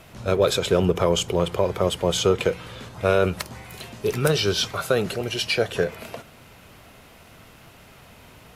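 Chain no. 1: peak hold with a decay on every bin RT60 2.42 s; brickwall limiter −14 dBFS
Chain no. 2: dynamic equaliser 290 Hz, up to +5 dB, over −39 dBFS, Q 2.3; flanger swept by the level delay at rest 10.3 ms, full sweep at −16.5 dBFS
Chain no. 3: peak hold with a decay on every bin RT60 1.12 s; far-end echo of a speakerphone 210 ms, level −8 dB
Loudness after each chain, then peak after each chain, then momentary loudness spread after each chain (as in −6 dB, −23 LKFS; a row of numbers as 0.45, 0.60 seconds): −23.0, −23.5, −19.0 LKFS; −14.0, −7.5, −4.0 dBFS; 6, 17, 10 LU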